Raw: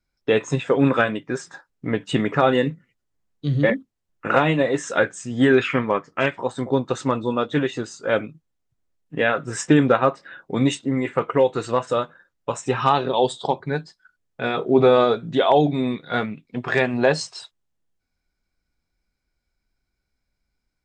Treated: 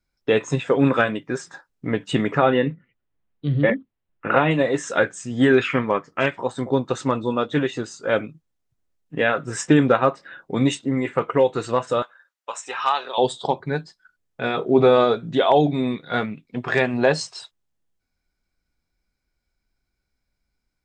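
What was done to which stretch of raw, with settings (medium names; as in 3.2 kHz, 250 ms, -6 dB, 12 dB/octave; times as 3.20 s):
2.38–4.51 s: low-pass 3.4 kHz 24 dB/octave
12.02–13.18 s: high-pass 900 Hz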